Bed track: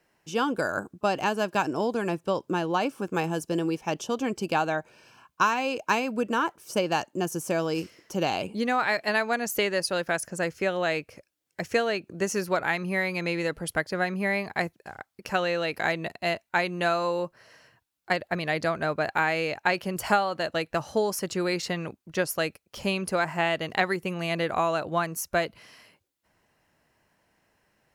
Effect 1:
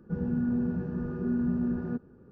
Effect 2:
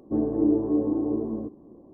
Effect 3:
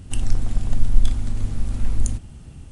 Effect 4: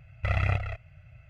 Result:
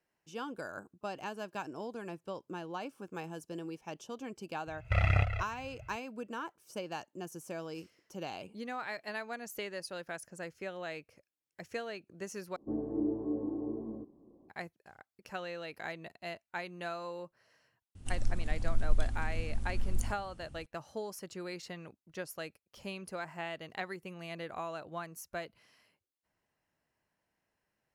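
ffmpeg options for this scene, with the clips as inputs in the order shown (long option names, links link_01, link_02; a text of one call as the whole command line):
ffmpeg -i bed.wav -i cue0.wav -i cue1.wav -i cue2.wav -i cue3.wav -filter_complex "[0:a]volume=-14.5dB,asplit=2[link_01][link_02];[link_01]atrim=end=12.564[link_03];[2:a]atrim=end=1.93,asetpts=PTS-STARTPTS,volume=-11dB[link_04];[link_02]atrim=start=14.486[link_05];[4:a]atrim=end=1.29,asetpts=PTS-STARTPTS,volume=-1dB,afade=type=in:duration=0.004:curve=hsin,afade=type=out:start_time=1.286:duration=0.004:curve=hsin,adelay=4670[link_06];[3:a]atrim=end=2.71,asetpts=PTS-STARTPTS,volume=-12dB,afade=type=in:duration=0.004:curve=hsin,afade=type=out:start_time=2.706:duration=0.004:curve=hsin,adelay=17950[link_07];[link_03][link_04]acrossfade=duration=0.004:curve1=hsin:curve2=hsin[link_08];[link_08][link_05]acrossfade=duration=0.004:curve1=hsin:curve2=hsin[link_09];[link_09][link_06][link_07]amix=inputs=3:normalize=0" out.wav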